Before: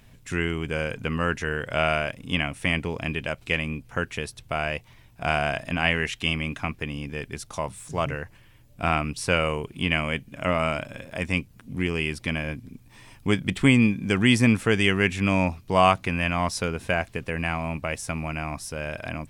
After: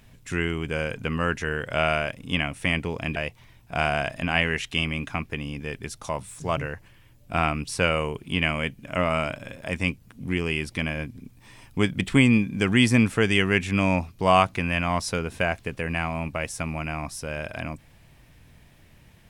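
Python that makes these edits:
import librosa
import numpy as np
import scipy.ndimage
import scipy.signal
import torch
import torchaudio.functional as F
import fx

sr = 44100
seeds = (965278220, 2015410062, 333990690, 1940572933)

y = fx.edit(x, sr, fx.cut(start_s=3.16, length_s=1.49), tone=tone)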